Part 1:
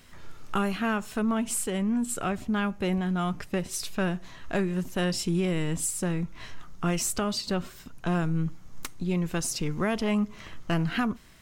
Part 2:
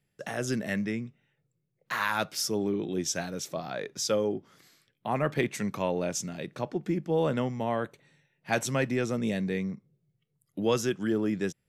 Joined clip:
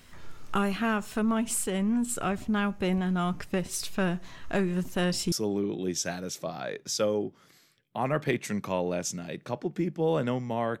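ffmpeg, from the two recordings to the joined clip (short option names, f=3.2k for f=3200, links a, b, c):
-filter_complex "[0:a]apad=whole_dur=10.8,atrim=end=10.8,atrim=end=5.322[a];[1:a]atrim=start=2.418:end=7.9[b];[a][b]acrossfade=d=0.004:c1=hsin:c2=hsin"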